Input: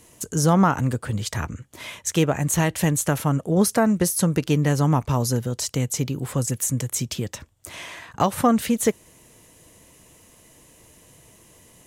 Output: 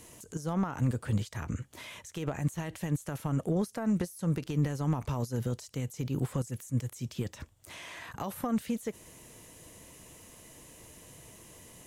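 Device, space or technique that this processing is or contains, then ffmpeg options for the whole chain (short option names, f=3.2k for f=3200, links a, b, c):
de-esser from a sidechain: -filter_complex "[0:a]asplit=2[a][b];[b]highpass=f=6.1k:p=1,apad=whole_len=523205[c];[a][c]sidechaincompress=threshold=-50dB:ratio=5:attack=2.6:release=43,asettb=1/sr,asplit=3[d][e][f];[d]atrim=end=8.044[g];[e]atrim=start=8.04:end=8.59,asetpts=PTS-STARTPTS,afade=t=in:d=0.004:c=qsin,afade=t=out:st=0.546:d=0.004:c=qsin,equalizer=f=12k:w=4:g=11.5[h];[f]atrim=start=8.586[i];[g][h]acrossfade=d=0.004:c1=hsin:c2=qsin[j];[j][i]acrossfade=d=0.004:c1=qsin:c2=hsin"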